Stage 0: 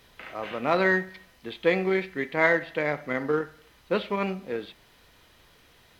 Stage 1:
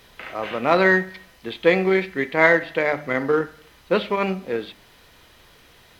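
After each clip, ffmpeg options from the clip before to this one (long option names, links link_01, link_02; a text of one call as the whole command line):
ffmpeg -i in.wav -af "bandreject=frequency=50:width_type=h:width=6,bandreject=frequency=100:width_type=h:width=6,bandreject=frequency=150:width_type=h:width=6,bandreject=frequency=200:width_type=h:width=6,bandreject=frequency=250:width_type=h:width=6,bandreject=frequency=300:width_type=h:width=6,volume=6dB" out.wav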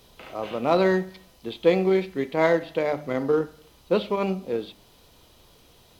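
ffmpeg -i in.wav -af "equalizer=frequency=1800:width=1.4:gain=-13,volume=-1dB" out.wav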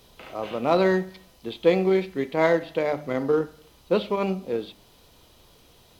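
ffmpeg -i in.wav -af anull out.wav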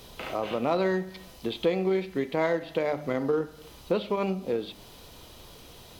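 ffmpeg -i in.wav -af "acompressor=threshold=-35dB:ratio=2.5,volume=6.5dB" out.wav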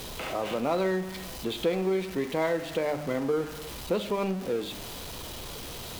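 ffmpeg -i in.wav -af "aeval=exprs='val(0)+0.5*0.0224*sgn(val(0))':channel_layout=same,volume=-2.5dB" out.wav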